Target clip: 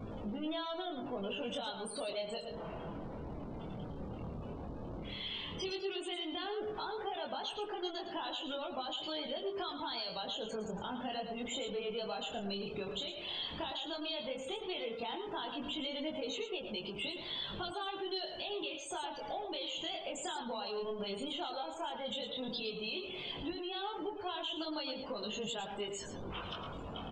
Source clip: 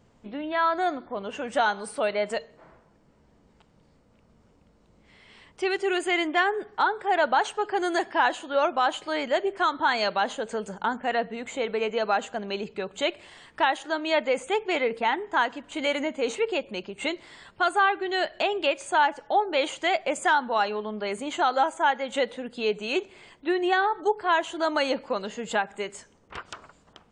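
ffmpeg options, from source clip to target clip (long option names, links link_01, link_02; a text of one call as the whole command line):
ffmpeg -i in.wav -filter_complex "[0:a]aeval=exprs='val(0)+0.5*0.0473*sgn(val(0))':channel_layout=same,aemphasis=mode=reproduction:type=50fm,afftdn=noise_reduction=35:noise_floor=-35,highshelf=frequency=2600:width_type=q:width=3:gain=11,alimiter=limit=-16.5dB:level=0:latency=1:release=257,acompressor=threshold=-26dB:ratio=12,flanger=delay=19:depth=6.8:speed=0.12,asplit=2[link_01][link_02];[link_02]adelay=110.8,volume=-8dB,highshelf=frequency=4000:gain=-2.49[link_03];[link_01][link_03]amix=inputs=2:normalize=0,volume=-7.5dB" out.wav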